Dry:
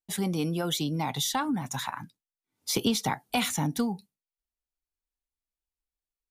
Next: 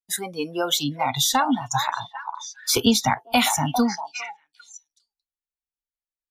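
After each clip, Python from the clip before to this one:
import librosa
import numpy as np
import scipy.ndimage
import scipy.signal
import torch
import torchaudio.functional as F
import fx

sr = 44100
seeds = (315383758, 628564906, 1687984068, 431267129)

y = fx.echo_stepped(x, sr, ms=402, hz=800.0, octaves=1.4, feedback_pct=70, wet_db=-4.0)
y = fx.noise_reduce_blind(y, sr, reduce_db=20)
y = y * 10.0 ** (8.5 / 20.0)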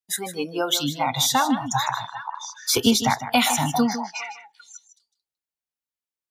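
y = scipy.signal.sosfilt(scipy.signal.butter(2, 70.0, 'highpass', fs=sr, output='sos'), x)
y = y + 10.0 ** (-11.5 / 20.0) * np.pad(y, (int(154 * sr / 1000.0), 0))[:len(y)]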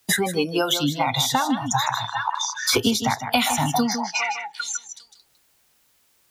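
y = fx.peak_eq(x, sr, hz=110.0, db=6.0, octaves=0.27)
y = fx.band_squash(y, sr, depth_pct=100)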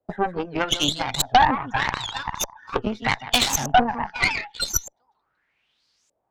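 y = fx.filter_lfo_lowpass(x, sr, shape='saw_up', hz=0.82, low_hz=560.0, high_hz=7200.0, q=5.4)
y = fx.cheby_harmonics(y, sr, harmonics=(5, 6, 7, 8), levels_db=(-20, -11, -19, -22), full_scale_db=-1.5)
y = fx.record_warp(y, sr, rpm=78.0, depth_cents=160.0)
y = y * 10.0 ** (-5.0 / 20.0)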